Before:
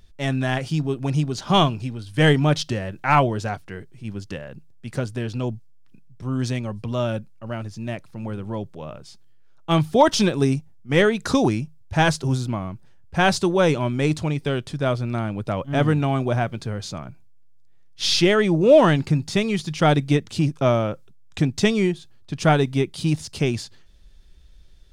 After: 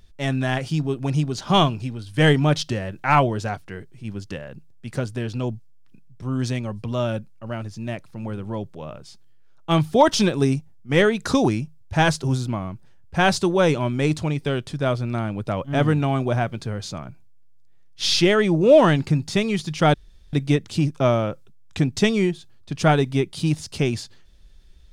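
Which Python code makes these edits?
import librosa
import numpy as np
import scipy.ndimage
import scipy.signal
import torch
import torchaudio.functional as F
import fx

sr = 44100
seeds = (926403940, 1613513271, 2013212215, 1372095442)

y = fx.edit(x, sr, fx.insert_room_tone(at_s=19.94, length_s=0.39), tone=tone)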